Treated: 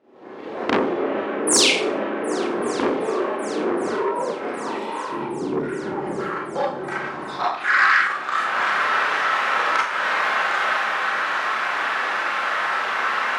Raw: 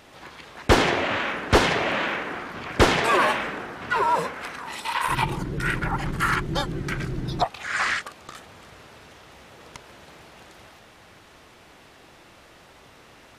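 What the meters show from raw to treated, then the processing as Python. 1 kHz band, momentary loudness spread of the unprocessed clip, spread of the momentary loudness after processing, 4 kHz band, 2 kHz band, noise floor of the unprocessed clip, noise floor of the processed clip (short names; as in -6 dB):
+4.0 dB, 15 LU, 11 LU, +4.0 dB, +6.0 dB, -51 dBFS, -32 dBFS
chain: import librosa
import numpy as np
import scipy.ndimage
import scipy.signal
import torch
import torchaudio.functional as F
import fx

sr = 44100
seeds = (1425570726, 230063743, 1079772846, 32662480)

p1 = fx.recorder_agc(x, sr, target_db=-8.0, rise_db_per_s=42.0, max_gain_db=30)
p2 = fx.highpass(p1, sr, hz=150.0, slope=6)
p3 = fx.low_shelf(p2, sr, hz=220.0, db=-3.5)
p4 = fx.filter_sweep_bandpass(p3, sr, from_hz=360.0, to_hz=1400.0, start_s=5.88, end_s=7.57, q=2.1)
p5 = fx.spec_paint(p4, sr, seeds[0], shape='fall', start_s=1.47, length_s=0.2, low_hz=2000.0, high_hz=11000.0, level_db=-18.0)
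p6 = p5 + fx.echo_heads(p5, sr, ms=383, heads='second and third', feedback_pct=70, wet_db=-22.0, dry=0)
p7 = fx.rev_schroeder(p6, sr, rt60_s=0.47, comb_ms=29, drr_db=-5.5)
p8 = fx.transformer_sat(p7, sr, knee_hz=2300.0)
y = F.gain(torch.from_numpy(p8), -2.0).numpy()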